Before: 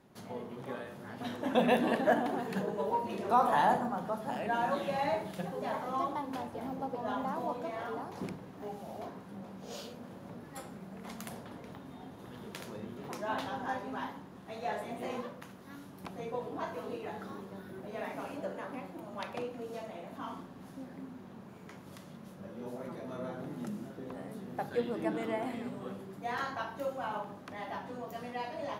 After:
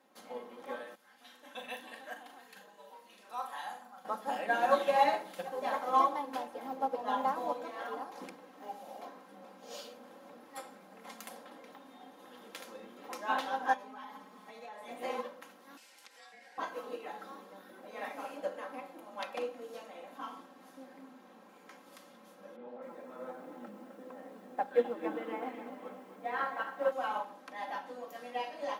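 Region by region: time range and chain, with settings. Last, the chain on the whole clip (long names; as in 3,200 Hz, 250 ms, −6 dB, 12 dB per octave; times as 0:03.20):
0:00.95–0:04.05: guitar amp tone stack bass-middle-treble 5-5-5 + double-tracking delay 40 ms −7 dB
0:13.73–0:14.88: comb filter 4.7 ms, depth 90% + downward compressor 10 to 1, threshold −40 dBFS
0:15.77–0:16.58: meter weighting curve ITU-R 468 + downward compressor 2.5 to 1, threshold −50 dBFS + ring modulation 1,200 Hz
0:22.56–0:26.92: high-pass filter 61 Hz 24 dB per octave + high-frequency loss of the air 370 metres + feedback echo at a low word length 258 ms, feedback 55%, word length 10 bits, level −9 dB
whole clip: high-pass filter 420 Hz 12 dB per octave; comb filter 3.8 ms, depth 68%; expander for the loud parts 1.5 to 1, over −43 dBFS; level +5.5 dB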